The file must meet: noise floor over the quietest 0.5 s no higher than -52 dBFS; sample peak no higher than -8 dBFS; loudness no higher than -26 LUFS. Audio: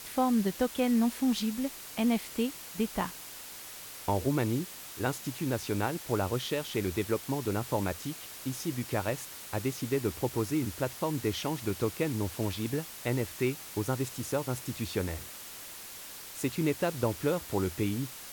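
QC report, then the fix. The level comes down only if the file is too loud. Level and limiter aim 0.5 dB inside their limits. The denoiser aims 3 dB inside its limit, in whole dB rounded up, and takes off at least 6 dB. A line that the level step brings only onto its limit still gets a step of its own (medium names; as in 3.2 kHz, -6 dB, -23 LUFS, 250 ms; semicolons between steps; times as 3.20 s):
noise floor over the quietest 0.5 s -45 dBFS: fail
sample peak -15.0 dBFS: pass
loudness -32.5 LUFS: pass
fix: noise reduction 10 dB, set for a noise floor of -45 dBFS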